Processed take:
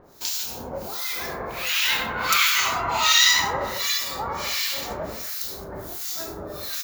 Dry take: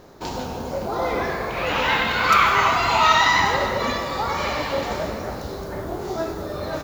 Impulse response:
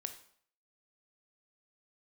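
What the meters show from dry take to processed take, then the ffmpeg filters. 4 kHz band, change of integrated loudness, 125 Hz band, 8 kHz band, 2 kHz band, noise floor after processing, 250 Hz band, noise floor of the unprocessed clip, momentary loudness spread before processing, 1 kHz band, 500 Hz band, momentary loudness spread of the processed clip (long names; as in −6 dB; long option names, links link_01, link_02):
+4.5 dB, −1.0 dB, −9.0 dB, +10.5 dB, −2.5 dB, −37 dBFS, −9.5 dB, −32 dBFS, 15 LU, −8.0 dB, −8.5 dB, 14 LU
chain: -filter_complex "[0:a]highshelf=frequency=3900:gain=5.5,acrossover=split=1500[link_01][link_02];[link_01]aeval=exprs='val(0)*(1-1/2+1/2*cos(2*PI*1.4*n/s))':channel_layout=same[link_03];[link_02]aeval=exprs='val(0)*(1-1/2-1/2*cos(2*PI*1.4*n/s))':channel_layout=same[link_04];[link_03][link_04]amix=inputs=2:normalize=0,crystalizer=i=5.5:c=0,asplit=2[link_05][link_06];[1:a]atrim=start_sample=2205[link_07];[link_06][link_07]afir=irnorm=-1:irlink=0,volume=-4.5dB[link_08];[link_05][link_08]amix=inputs=2:normalize=0,volume=-8dB"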